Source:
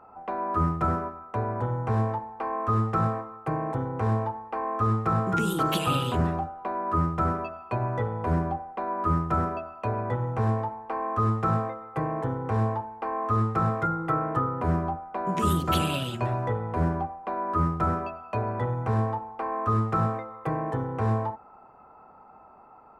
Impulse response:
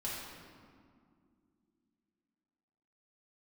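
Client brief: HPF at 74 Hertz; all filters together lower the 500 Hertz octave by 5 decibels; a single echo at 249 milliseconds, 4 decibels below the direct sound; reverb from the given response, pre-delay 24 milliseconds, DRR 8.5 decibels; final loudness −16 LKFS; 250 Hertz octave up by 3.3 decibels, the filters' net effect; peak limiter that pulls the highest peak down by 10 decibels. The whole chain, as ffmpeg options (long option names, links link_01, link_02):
-filter_complex "[0:a]highpass=74,equalizer=frequency=250:width_type=o:gain=7,equalizer=frequency=500:width_type=o:gain=-9,alimiter=limit=-21.5dB:level=0:latency=1,aecho=1:1:249:0.631,asplit=2[link_01][link_02];[1:a]atrim=start_sample=2205,adelay=24[link_03];[link_02][link_03]afir=irnorm=-1:irlink=0,volume=-11dB[link_04];[link_01][link_04]amix=inputs=2:normalize=0,volume=12.5dB"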